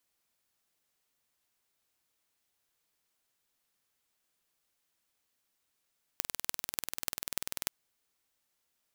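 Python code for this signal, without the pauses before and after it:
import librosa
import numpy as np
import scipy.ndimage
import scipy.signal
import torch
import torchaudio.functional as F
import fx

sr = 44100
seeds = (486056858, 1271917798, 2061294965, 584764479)

y = fx.impulse_train(sr, length_s=1.48, per_s=20.4, accent_every=6, level_db=-2.0)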